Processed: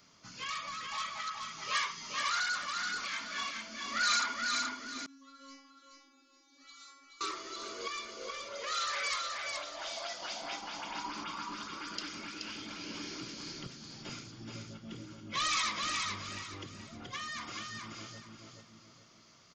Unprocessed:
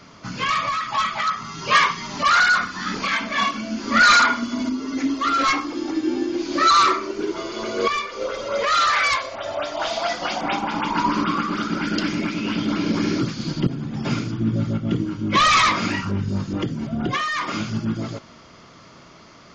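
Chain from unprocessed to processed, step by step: pre-emphasis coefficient 0.8; feedback echo 0.427 s, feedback 29%, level -4 dB; dynamic EQ 170 Hz, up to -7 dB, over -49 dBFS, Q 0.78; 5.06–7.21 metallic resonator 270 Hz, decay 0.83 s, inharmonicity 0.002; gain -6.5 dB

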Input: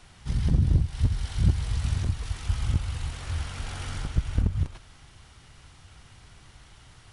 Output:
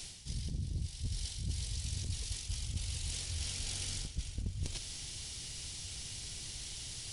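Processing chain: EQ curve 460 Hz 0 dB, 1300 Hz -11 dB, 2300 Hz +3 dB, 5000 Hz +15 dB; reverse; compressor 6:1, threshold -38 dBFS, peak gain reduction 21 dB; reverse; gain +2 dB

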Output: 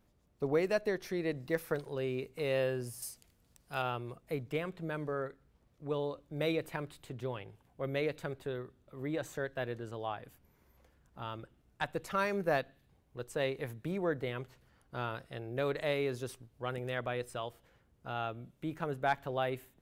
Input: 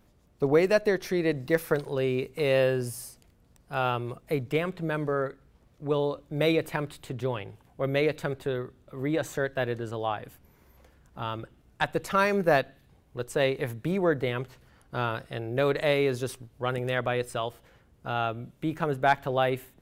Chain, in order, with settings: 3.02–3.82 high shelf 2200 Hz +10 dB; gain -8.5 dB

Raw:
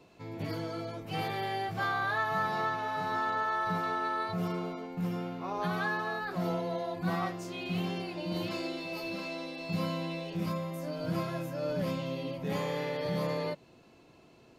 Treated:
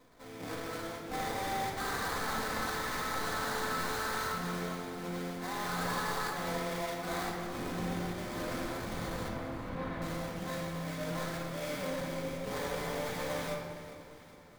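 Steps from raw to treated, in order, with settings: HPF 350 Hz 6 dB/oct; tilt shelf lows -3 dB, about 1300 Hz; sample-rate reducer 2800 Hz, jitter 20%; wavefolder -31.5 dBFS; 9.28–10.02 air absorption 360 m; echo with dull and thin repeats by turns 0.203 s, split 880 Hz, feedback 72%, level -11 dB; shoebox room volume 1400 m³, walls mixed, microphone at 2 m; gain -2 dB

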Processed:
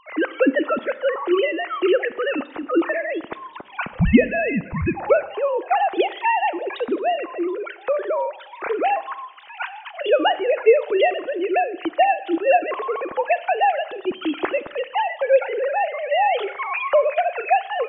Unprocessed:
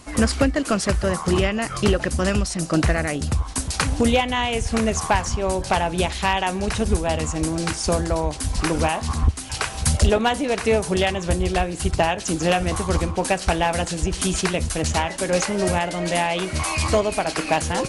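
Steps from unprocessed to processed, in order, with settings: sine-wave speech; Schroeder reverb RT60 0.92 s, combs from 29 ms, DRR 15.5 dB; 3.93–5.35 frequency shift -270 Hz

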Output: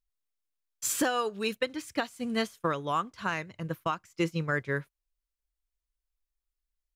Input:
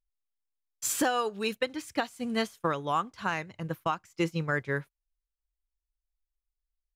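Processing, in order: bell 810 Hz -5.5 dB 0.25 oct

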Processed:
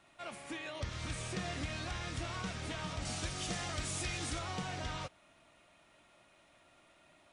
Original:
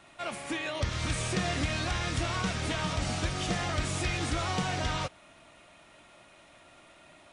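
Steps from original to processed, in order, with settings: 3.05–4.39 high shelf 4600 Hz +10 dB; gain -9 dB

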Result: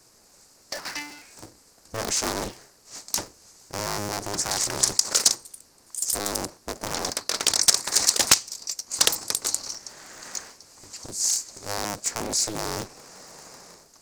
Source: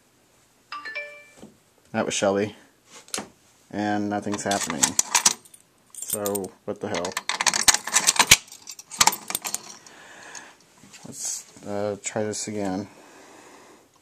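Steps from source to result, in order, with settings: cycle switcher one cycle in 2, inverted; in parallel at 0 dB: negative-ratio compressor -30 dBFS, ratio -1; on the sum: resonant high shelf 4000 Hz +6 dB, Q 3; Doppler distortion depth 0.76 ms; gain -9 dB

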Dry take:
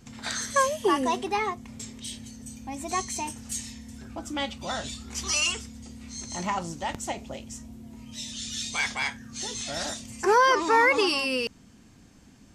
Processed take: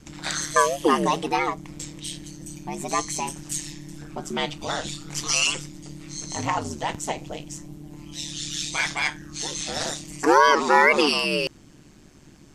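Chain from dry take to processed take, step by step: ring modulator 74 Hz; gain +6.5 dB

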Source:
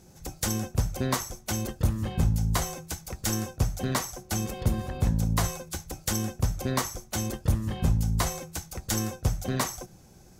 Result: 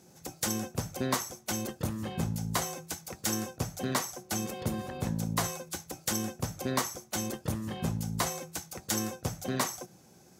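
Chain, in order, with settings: HPF 160 Hz 12 dB/oct; gain -1.5 dB

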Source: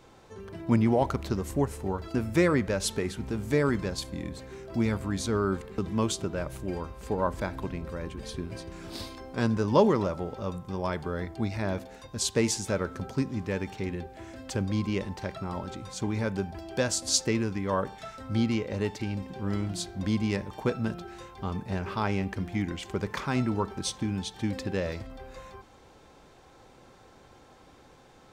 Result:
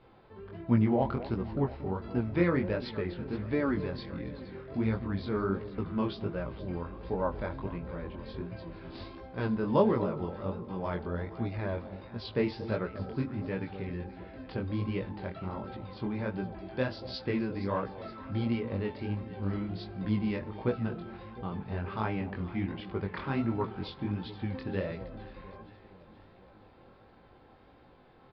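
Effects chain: downsampling 11025 Hz; air absorption 220 m; echo with dull and thin repeats by turns 0.235 s, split 850 Hz, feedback 75%, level -13 dB; chorus 1.4 Hz, delay 16.5 ms, depth 7.2 ms

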